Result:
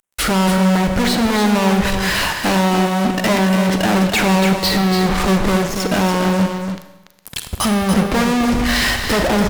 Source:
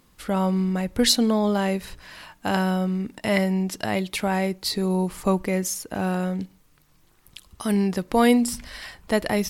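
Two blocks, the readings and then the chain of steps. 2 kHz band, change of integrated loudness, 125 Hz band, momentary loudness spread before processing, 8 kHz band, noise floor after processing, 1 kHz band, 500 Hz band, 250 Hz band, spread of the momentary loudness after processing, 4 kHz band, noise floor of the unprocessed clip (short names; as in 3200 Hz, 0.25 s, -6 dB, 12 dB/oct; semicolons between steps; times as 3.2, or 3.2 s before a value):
+11.5 dB, +7.5 dB, +9.0 dB, 13 LU, +6.5 dB, -46 dBFS, +10.0 dB, +6.0 dB, +7.5 dB, 4 LU, +8.5 dB, -59 dBFS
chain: treble ducked by the level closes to 1200 Hz, closed at -21.5 dBFS; fuzz box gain 48 dB, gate -49 dBFS; on a send: echo 0.287 s -7 dB; on the sum: Schroeder reverb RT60 1 s, combs from 31 ms, DRR 8.5 dB; gain -2 dB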